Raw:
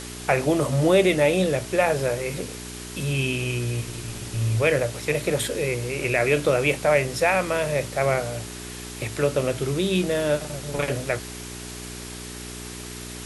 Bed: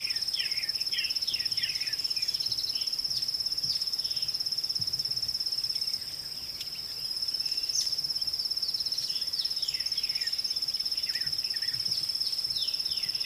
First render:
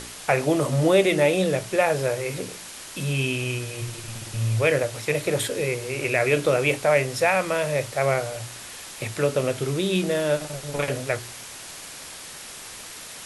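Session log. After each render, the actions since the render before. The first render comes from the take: de-hum 60 Hz, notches 7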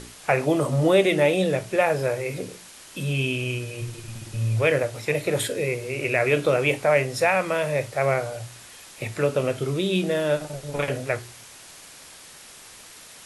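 noise print and reduce 6 dB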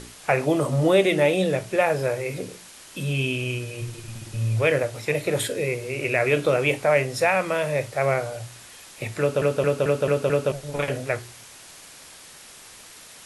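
9.2 stutter in place 0.22 s, 6 plays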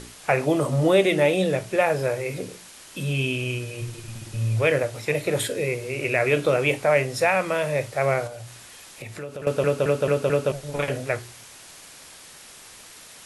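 8.27–9.47 compressor 3:1, threshold -35 dBFS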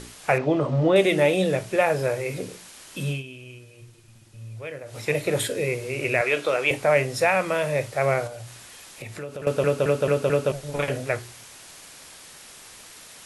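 0.38–0.96 air absorption 190 m; 3.08–5 dip -15 dB, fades 0.15 s; 6.21–6.71 weighting filter A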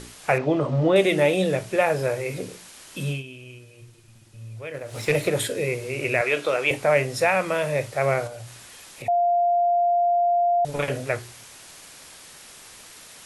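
4.74–5.29 sample leveller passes 1; 9.08–10.65 bleep 698 Hz -17 dBFS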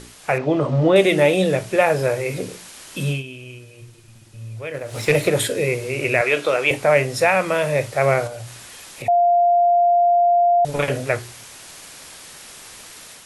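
AGC gain up to 5 dB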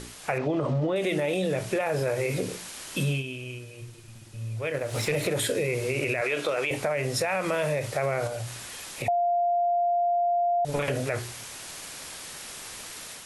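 limiter -15 dBFS, peak gain reduction 11.5 dB; compressor, threshold -23 dBFS, peak gain reduction 6 dB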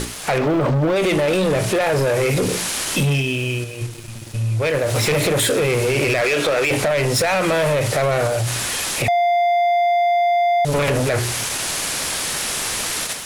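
sample leveller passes 3; in parallel at -0.5 dB: level quantiser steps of 15 dB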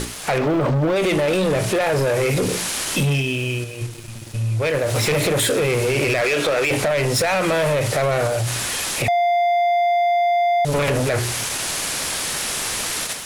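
gain -1 dB

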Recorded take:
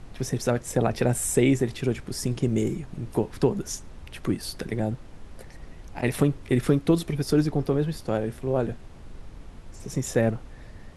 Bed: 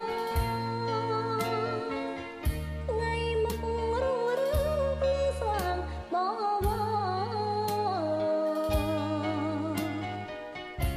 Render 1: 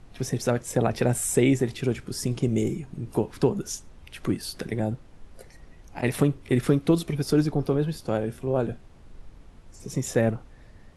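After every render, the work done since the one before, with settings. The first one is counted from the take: noise print and reduce 6 dB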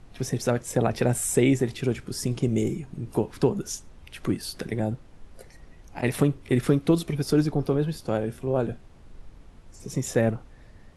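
nothing audible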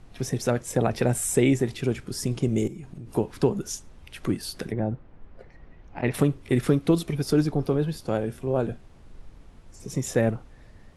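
2.67–3.1 compressor 10:1, threshold -34 dBFS; 4.71–6.13 LPF 1700 Hz -> 3000 Hz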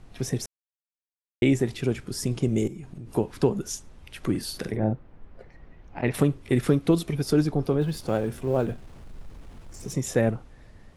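0.46–1.42 mute; 4.3–4.93 doubler 46 ms -6 dB; 7.81–9.93 G.711 law mismatch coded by mu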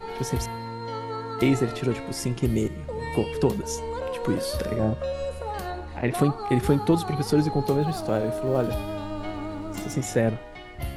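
add bed -2.5 dB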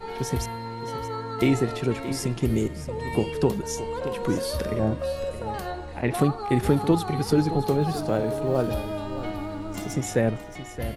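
echo 0.622 s -13 dB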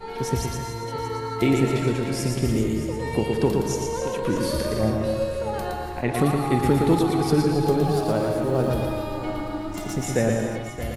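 echo 0.116 s -4 dB; non-linear reverb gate 0.31 s rising, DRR 5.5 dB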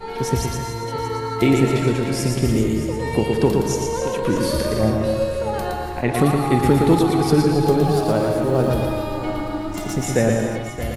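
gain +4 dB

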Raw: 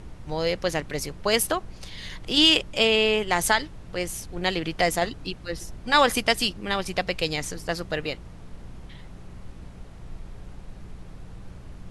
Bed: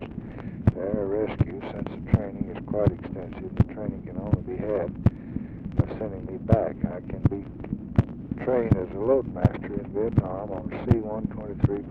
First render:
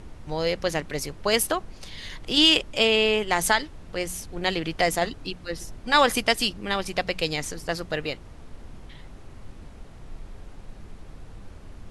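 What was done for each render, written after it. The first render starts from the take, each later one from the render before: de-hum 60 Hz, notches 3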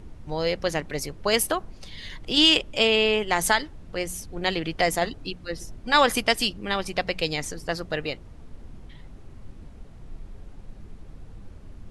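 denoiser 6 dB, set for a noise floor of -45 dBFS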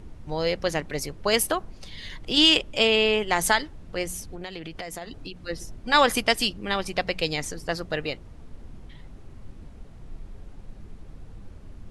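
4.26–5.4 compressor 8:1, threshold -32 dBFS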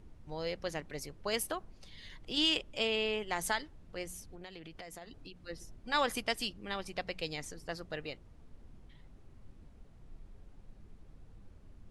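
gain -12 dB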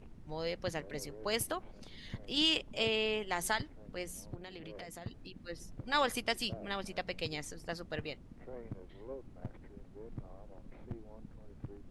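add bed -24 dB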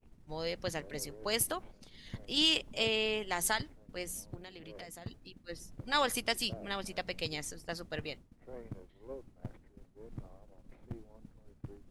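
expander -44 dBFS; high shelf 5500 Hz +8 dB

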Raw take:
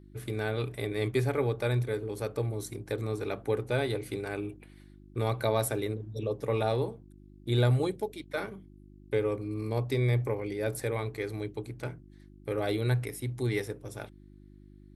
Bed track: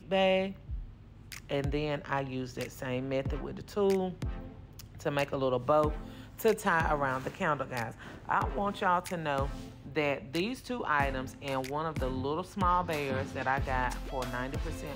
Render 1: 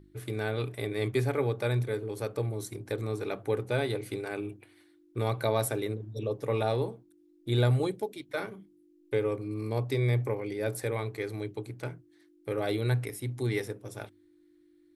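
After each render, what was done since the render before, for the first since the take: de-hum 50 Hz, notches 5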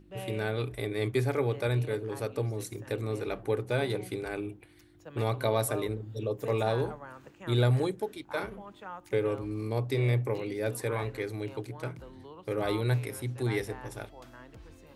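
add bed track -15 dB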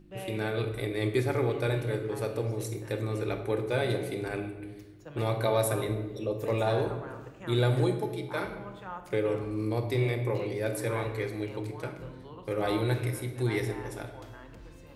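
shoebox room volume 690 m³, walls mixed, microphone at 0.86 m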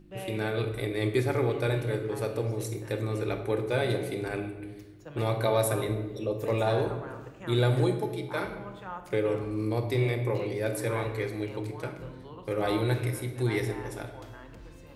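gain +1 dB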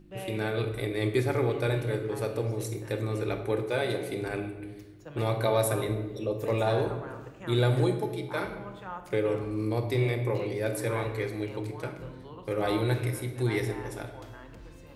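3.63–4.11 low shelf 150 Hz -9.5 dB

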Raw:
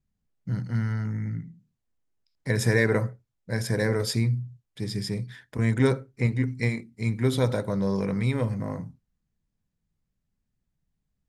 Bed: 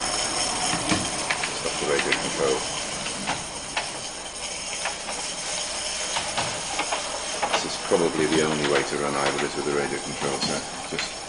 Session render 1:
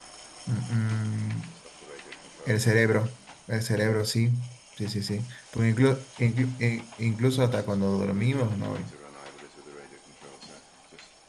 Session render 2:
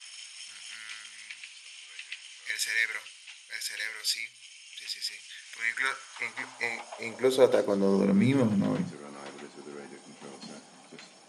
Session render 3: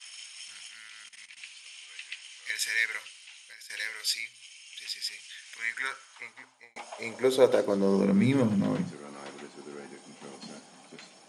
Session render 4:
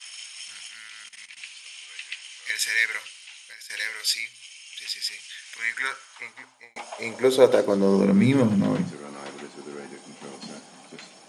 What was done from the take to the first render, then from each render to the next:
add bed -21 dB
high-pass sweep 2600 Hz -> 200 Hz, 5.33–8.27
0.67–1.37 level quantiser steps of 16 dB; 3.19–3.7 compressor 16:1, threshold -43 dBFS; 5.34–6.76 fade out
gain +5 dB

